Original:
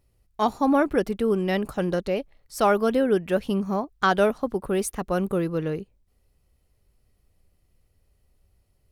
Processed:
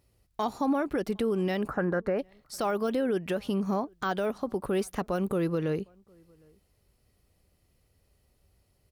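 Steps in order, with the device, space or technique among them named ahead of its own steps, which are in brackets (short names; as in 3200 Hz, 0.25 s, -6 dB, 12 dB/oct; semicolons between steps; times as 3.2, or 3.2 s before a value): broadcast voice chain (HPF 81 Hz 6 dB/oct; de-esser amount 75%; compressor 4:1, threshold -25 dBFS, peak gain reduction 8.5 dB; bell 4600 Hz +2 dB; limiter -22 dBFS, peak gain reduction 7.5 dB); 1.68–2.19 resonant high shelf 2400 Hz -13.5 dB, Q 3; outdoor echo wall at 130 m, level -30 dB; gain +2 dB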